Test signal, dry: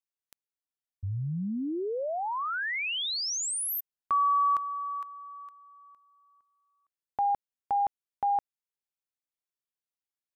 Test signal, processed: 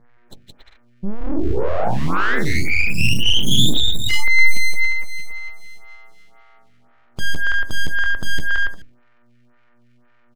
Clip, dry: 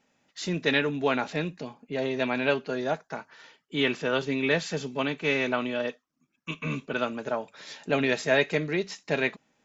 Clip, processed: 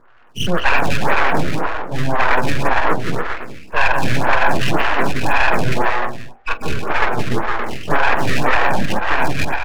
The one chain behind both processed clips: nonlinear frequency compression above 1000 Hz 4:1; buzz 120 Hz, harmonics 14, -64 dBFS -8 dB/oct; bouncing-ball echo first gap 0.17 s, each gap 0.65×, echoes 5; full-wave rectifier; de-hum 45.83 Hz, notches 18; maximiser +16.5 dB; photocell phaser 1.9 Hz

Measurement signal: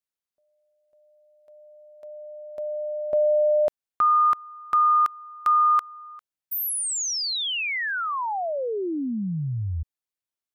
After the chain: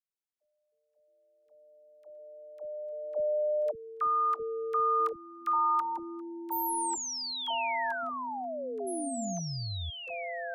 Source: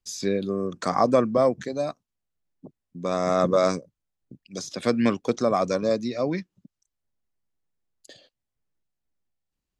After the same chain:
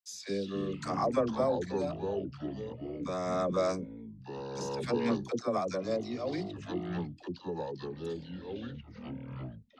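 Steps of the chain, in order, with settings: echoes that change speed 0.173 s, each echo -5 st, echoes 3, each echo -6 dB; dispersion lows, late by 74 ms, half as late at 500 Hz; gain -9 dB

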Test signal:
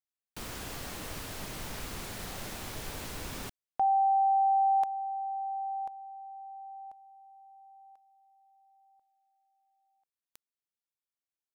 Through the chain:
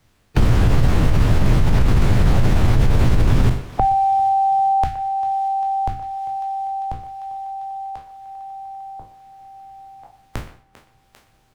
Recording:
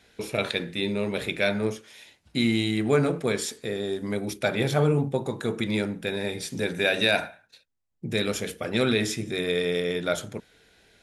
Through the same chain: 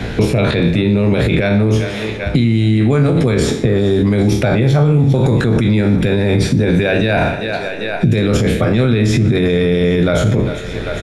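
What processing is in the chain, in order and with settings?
spectral trails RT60 0.41 s; RIAA curve playback; on a send: thinning echo 0.397 s, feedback 69%, high-pass 320 Hz, level -22 dB; on the sum: harmonic-percussive split percussive +5 dB; in parallel at +1.5 dB: negative-ratio compressor -24 dBFS, ratio -0.5; on the sum: bell 120 Hz +5.5 dB 0.4 oct; speakerphone echo 0.12 s, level -17 dB; limiter -10 dBFS; three-band squash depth 70%; gain +5 dB

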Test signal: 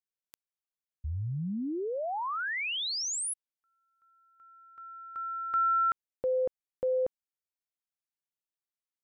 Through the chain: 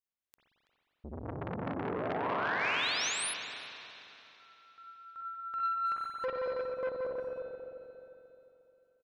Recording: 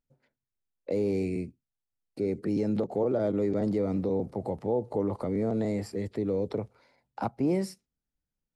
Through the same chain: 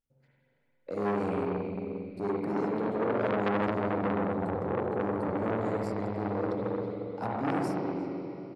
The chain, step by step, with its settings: speakerphone echo 0.33 s, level -11 dB; tremolo triangle 5 Hz, depth 55%; spring tank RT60 3.1 s, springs 44/59 ms, chirp 40 ms, DRR -6 dB; core saturation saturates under 1400 Hz; gain -2 dB

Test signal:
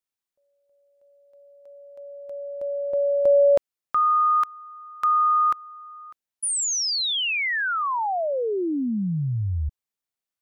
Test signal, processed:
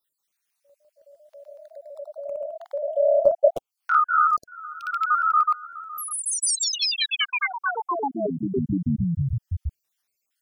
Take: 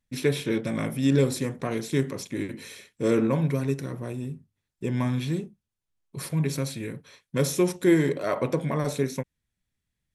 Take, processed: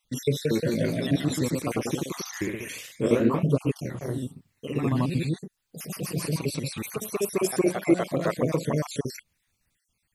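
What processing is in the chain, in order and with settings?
random spectral dropouts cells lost 62%; in parallel at -3 dB: compressor, threshold -38 dBFS; on the sum: echoes that change speed 0.192 s, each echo +1 st, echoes 3; mismatched tape noise reduction encoder only

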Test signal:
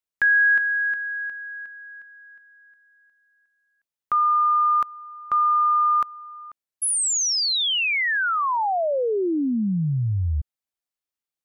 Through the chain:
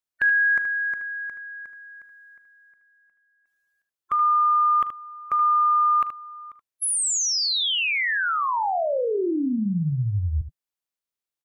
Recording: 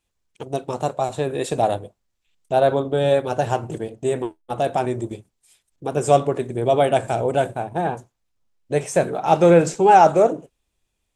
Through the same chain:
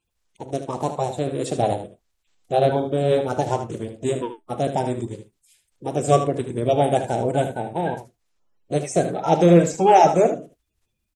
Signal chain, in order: bin magnitudes rounded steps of 30 dB; early reflections 40 ms -18 dB, 76 ms -10 dB; gain -1 dB

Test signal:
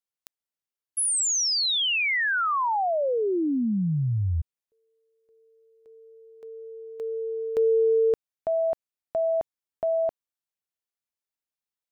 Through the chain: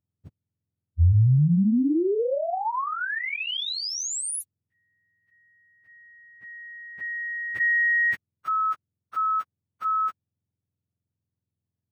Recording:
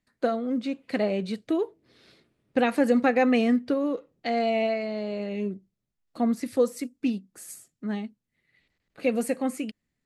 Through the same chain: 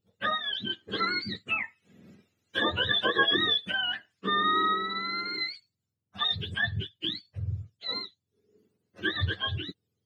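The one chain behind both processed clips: spectrum mirrored in octaves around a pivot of 920 Hz

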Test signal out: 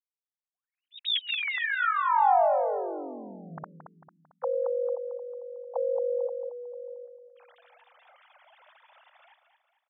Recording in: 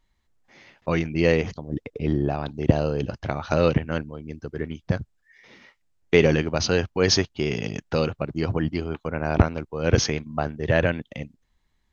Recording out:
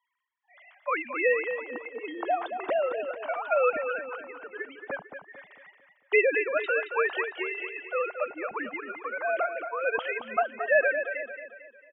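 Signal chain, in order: sine-wave speech; resonant low shelf 500 Hz -14 dB, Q 1.5; on a send: feedback echo 0.224 s, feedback 44%, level -8.5 dB

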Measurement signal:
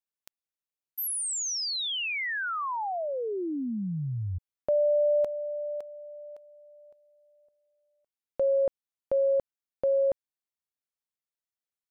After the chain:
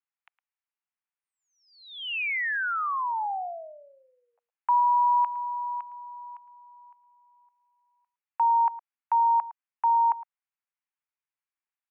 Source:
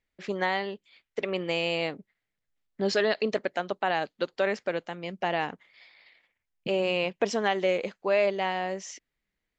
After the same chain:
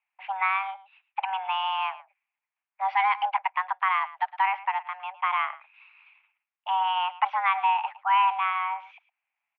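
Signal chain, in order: outdoor echo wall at 19 m, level -17 dB; mistuned SSB +380 Hz 380–2400 Hz; gain +3 dB

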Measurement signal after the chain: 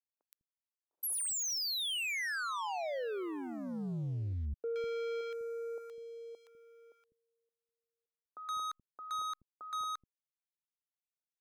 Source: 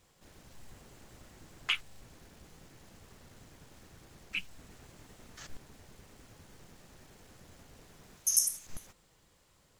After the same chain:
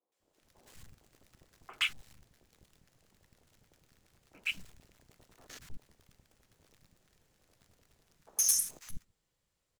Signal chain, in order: high shelf 11000 Hz +2 dB; sample leveller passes 3; three bands offset in time mids, highs, lows 0.12/0.2 s, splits 270/1000 Hz; gain -9 dB

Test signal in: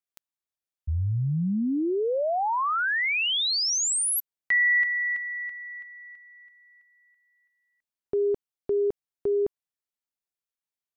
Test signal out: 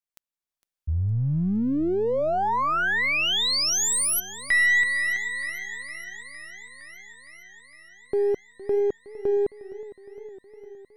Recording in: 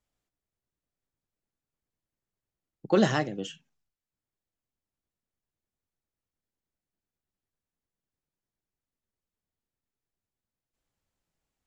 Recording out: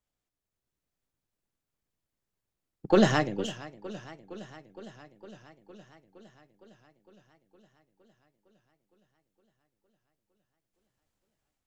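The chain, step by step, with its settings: half-wave gain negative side -3 dB; AGC gain up to 5 dB; warbling echo 0.461 s, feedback 73%, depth 105 cents, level -17.5 dB; gain -2 dB

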